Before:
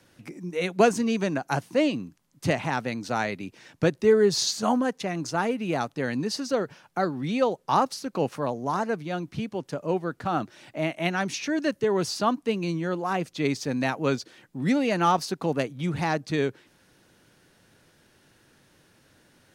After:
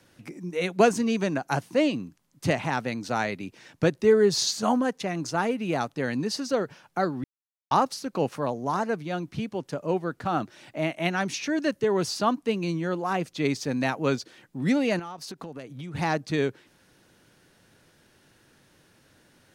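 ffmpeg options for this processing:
ffmpeg -i in.wav -filter_complex "[0:a]asettb=1/sr,asplit=3[link_01][link_02][link_03];[link_01]atrim=end=14.994[link_04];[link_02]atrim=start=14.99:end=15.95,asetpts=PTS-STARTPTS,afade=type=in:duration=0.004:curve=qsin,afade=type=out:start_time=0.956:duration=0.004:curve=qsin,acompressor=threshold=-34dB:ratio=12:attack=3.2:release=140:knee=1:detection=peak[link_05];[link_03]atrim=start=15.946[link_06];[link_04][link_05]acrossfade=duration=0.004:curve1=hsin:curve2=qsin[link_07];[link_07][link_06]acrossfade=duration=0.004:curve1=qsin:curve2=hsin,asplit=3[link_08][link_09][link_10];[link_08]atrim=end=7.24,asetpts=PTS-STARTPTS,afade=type=out:start_time=7.236:duration=0.004:curve=hsin[link_11];[link_09]atrim=start=7.24:end=7.71,asetpts=PTS-STARTPTS,volume=0[link_12];[link_10]atrim=start=7.71,asetpts=PTS-STARTPTS,afade=type=in:duration=0.004:curve=hsin[link_13];[link_11][link_12][link_13]concat=n=3:v=0:a=1" out.wav

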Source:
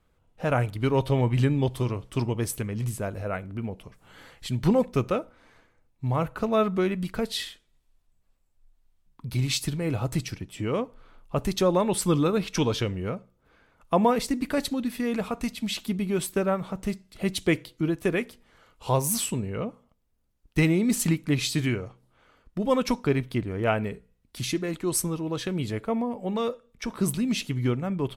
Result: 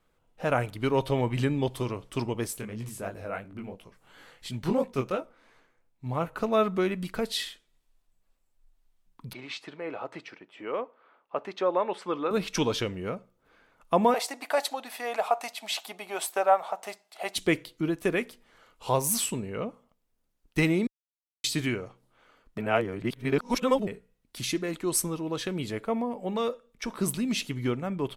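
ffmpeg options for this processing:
ffmpeg -i in.wav -filter_complex "[0:a]asettb=1/sr,asplit=3[link_01][link_02][link_03];[link_01]atrim=end=2.474[link_04];[link_02]atrim=start=2.47:end=6.33,asetpts=PTS-STARTPTS,afade=type=in:duration=0.004:curve=qsin,afade=type=out:start_time=3.856:duration=0.004:curve=qsin,flanger=delay=17:depth=7.4:speed=2.9[link_05];[link_03]atrim=start=6.326[link_06];[link_04][link_05]acrossfade=duration=0.004:curve1=hsin:curve2=qsin[link_07];[link_07][link_06]acrossfade=duration=0.004:curve1=qsin:curve2=hsin,asettb=1/sr,asplit=3[link_08][link_09][link_10];[link_08]atrim=end=9.334[link_11];[link_09]atrim=start=9.33:end=12.31,asetpts=PTS-STARTPTS,afade=type=in:duration=0.004:curve=qsin,afade=type=out:start_time=2.976:duration=0.004:curve=qsin,highpass=460,lowpass=2100[link_12];[link_10]atrim=start=12.306[link_13];[link_11][link_12]acrossfade=duration=0.004:curve1=hsin:curve2=qsin[link_14];[link_14][link_13]acrossfade=duration=0.004:curve1=qsin:curve2=hsin,asettb=1/sr,asplit=3[link_15][link_16][link_17];[link_15]atrim=end=14.144[link_18];[link_16]atrim=start=14.14:end=17.36,asetpts=PTS-STARTPTS,afade=type=in:duration=0.004:curve=qsin,afade=type=out:start_time=3.216:duration=0.004:curve=qsin,highpass=frequency=730:width_type=q:width=5[link_19];[link_17]atrim=start=17.356[link_20];[link_18][link_19]acrossfade=duration=0.004:curve1=hsin:curve2=qsin[link_21];[link_21][link_20]acrossfade=duration=0.004:curve1=qsin:curve2=hsin,asplit=5[link_22][link_23][link_24][link_25][link_26];[link_22]atrim=end=20.87,asetpts=PTS-STARTPTS,afade=type=out:start_time=20.866:duration=0.004:curve=hsin[link_27];[link_23]atrim=start=20.87:end=21.44,asetpts=PTS-STARTPTS,volume=0[link_28];[link_24]atrim=start=21.44:end=22.582,asetpts=PTS-STARTPTS,afade=type=in:duration=0.004:curve=hsin[link_29];[link_25]atrim=start=22.578:end=23.872,asetpts=PTS-STARTPTS,areverse[link_30];[link_26]atrim=start=23.868[link_31];[link_27][link_28][link_29]concat=n=3:v=0:a=1[link_32];[link_32][link_30]acrossfade=duration=0.004:curve1=hsin:curve2=hsin[link_33];[link_33][link_31]acrossfade=duration=0.004:curve1=hsin:curve2=hsin,equalizer=frequency=68:width=0.52:gain=-10" out.wav

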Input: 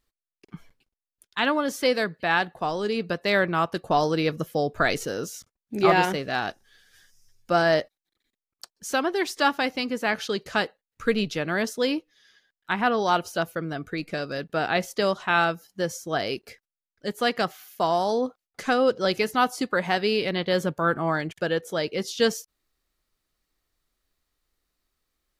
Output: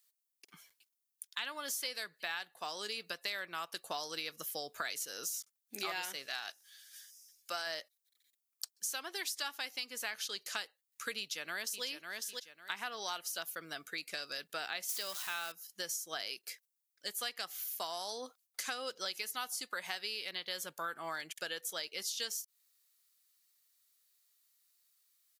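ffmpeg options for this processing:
ffmpeg -i in.wav -filter_complex "[0:a]asettb=1/sr,asplit=3[link_01][link_02][link_03];[link_01]atrim=end=6.264[link_04];[link_02]atrim=start=6.26:end=7.67,asetpts=PTS-STARTPTS,afade=type=in:duration=0.004:curve=qsin,afade=type=out:start_time=1.406:duration=0.004:curve=qsin,equalizer=frequency=160:width=0.47:gain=-9[link_05];[link_03]atrim=start=7.666[link_06];[link_04][link_05]acrossfade=duration=0.004:curve1=hsin:curve2=qsin[link_07];[link_07][link_06]acrossfade=duration=0.004:curve1=qsin:curve2=hsin,asplit=2[link_08][link_09];[link_09]afade=type=in:start_time=11.18:duration=0.01,afade=type=out:start_time=11.84:duration=0.01,aecho=0:1:550|1100|1650:0.354813|0.0887033|0.0221758[link_10];[link_08][link_10]amix=inputs=2:normalize=0,asettb=1/sr,asplit=3[link_11][link_12][link_13];[link_11]atrim=end=14.894[link_14];[link_12]atrim=start=14.89:end=15.52,asetpts=PTS-STARTPTS,afade=type=in:duration=0.004:curve=qsin,afade=type=out:start_time=0.626:duration=0.004:curve=qsin,aeval=exprs='val(0)+0.5*0.0299*sgn(val(0))':channel_layout=same[link_15];[link_13]atrim=start=15.516[link_16];[link_14][link_15]acrossfade=duration=0.004:curve1=hsin:curve2=qsin[link_17];[link_17][link_16]acrossfade=duration=0.004:curve1=qsin:curve2=hsin,aderivative,acompressor=threshold=-44dB:ratio=5,volume=7.5dB" out.wav

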